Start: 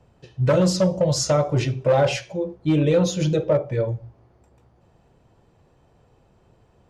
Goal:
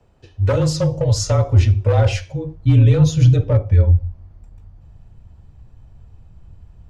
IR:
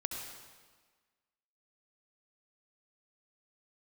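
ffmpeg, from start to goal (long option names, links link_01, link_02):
-af "afreqshift=-29,asubboost=boost=11.5:cutoff=120"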